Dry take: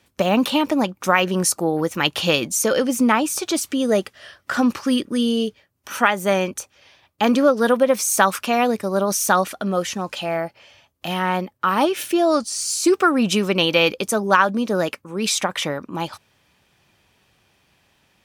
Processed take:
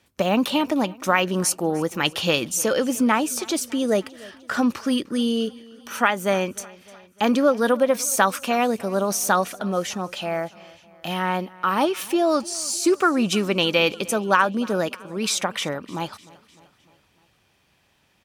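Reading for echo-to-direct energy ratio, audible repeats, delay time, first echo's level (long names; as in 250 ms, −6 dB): −20.5 dB, 3, 303 ms, −22.0 dB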